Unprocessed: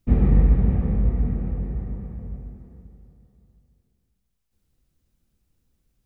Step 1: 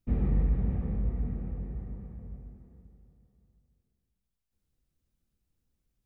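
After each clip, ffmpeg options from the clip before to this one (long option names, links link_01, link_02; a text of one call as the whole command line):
ffmpeg -i in.wav -af "asoftclip=type=tanh:threshold=-6.5dB,volume=-9dB" out.wav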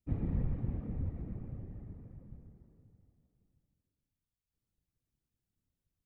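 ffmpeg -i in.wav -af "aeval=exprs='0.141*(cos(1*acos(clip(val(0)/0.141,-1,1)))-cos(1*PI/2))+0.00891*(cos(3*acos(clip(val(0)/0.141,-1,1)))-cos(3*PI/2))':channel_layout=same,afftfilt=real='hypot(re,im)*cos(2*PI*random(0))':imag='hypot(re,im)*sin(2*PI*random(1))':win_size=512:overlap=0.75" out.wav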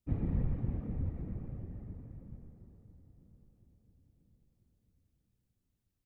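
ffmpeg -i in.wav -filter_complex "[0:a]asplit=2[link_01][link_02];[link_02]adelay=994,lowpass=frequency=1600:poles=1,volume=-19dB,asplit=2[link_03][link_04];[link_04]adelay=994,lowpass=frequency=1600:poles=1,volume=0.45,asplit=2[link_05][link_06];[link_06]adelay=994,lowpass=frequency=1600:poles=1,volume=0.45,asplit=2[link_07][link_08];[link_08]adelay=994,lowpass=frequency=1600:poles=1,volume=0.45[link_09];[link_01][link_03][link_05][link_07][link_09]amix=inputs=5:normalize=0,volume=1dB" out.wav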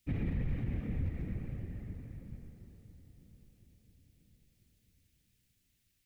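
ffmpeg -i in.wav -af "highshelf=frequency=1500:width_type=q:width=1.5:gain=11,alimiter=level_in=4.5dB:limit=-24dB:level=0:latency=1:release=37,volume=-4.5dB,volume=2dB" out.wav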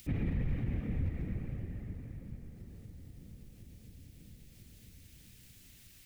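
ffmpeg -i in.wav -af "acompressor=mode=upward:threshold=-42dB:ratio=2.5,volume=1dB" out.wav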